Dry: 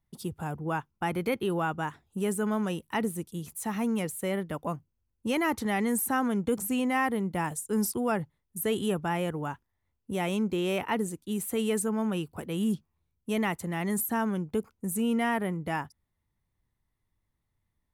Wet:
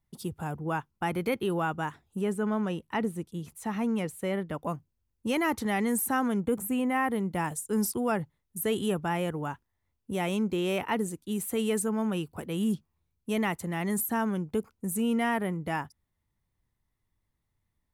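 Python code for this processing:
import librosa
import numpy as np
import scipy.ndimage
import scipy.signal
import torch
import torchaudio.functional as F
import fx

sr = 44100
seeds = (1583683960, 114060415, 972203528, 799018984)

y = fx.lowpass(x, sr, hz=fx.line((2.2, 2600.0), (4.61, 4800.0)), slope=6, at=(2.2, 4.61), fade=0.02)
y = fx.peak_eq(y, sr, hz=5000.0, db=-13.5, octaves=1.0, at=(6.4, 7.1))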